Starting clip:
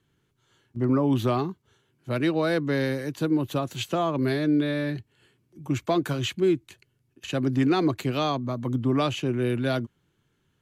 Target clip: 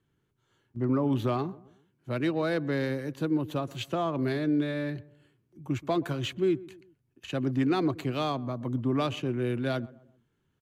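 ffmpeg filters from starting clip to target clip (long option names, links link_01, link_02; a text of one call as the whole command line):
ffmpeg -i in.wav -filter_complex "[0:a]asplit=2[link_01][link_02];[link_02]adelay=128,lowpass=frequency=1300:poles=1,volume=-19dB,asplit=2[link_03][link_04];[link_04]adelay=128,lowpass=frequency=1300:poles=1,volume=0.42,asplit=2[link_05][link_06];[link_06]adelay=128,lowpass=frequency=1300:poles=1,volume=0.42[link_07];[link_01][link_03][link_05][link_07]amix=inputs=4:normalize=0,asplit=2[link_08][link_09];[link_09]adynamicsmooth=sensitivity=6.5:basefreq=2900,volume=-3dB[link_10];[link_08][link_10]amix=inputs=2:normalize=0,volume=-8.5dB" out.wav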